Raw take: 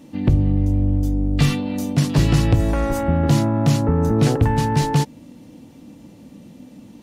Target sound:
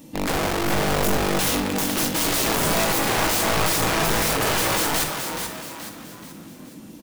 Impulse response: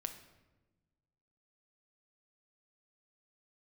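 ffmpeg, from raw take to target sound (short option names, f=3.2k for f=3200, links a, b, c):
-filter_complex "[0:a]aemphasis=mode=production:type=50kf,aeval=exprs='(mod(7.08*val(0)+1,2)-1)/7.08':c=same,asplit=6[a][b][c][d][e][f];[b]adelay=427,afreqshift=43,volume=-6.5dB[g];[c]adelay=854,afreqshift=86,volume=-13.6dB[h];[d]adelay=1281,afreqshift=129,volume=-20.8dB[i];[e]adelay=1708,afreqshift=172,volume=-27.9dB[j];[f]adelay=2135,afreqshift=215,volume=-35dB[k];[a][g][h][i][j][k]amix=inputs=6:normalize=0[l];[1:a]atrim=start_sample=2205,atrim=end_sample=6174[m];[l][m]afir=irnorm=-1:irlink=0,volume=1dB"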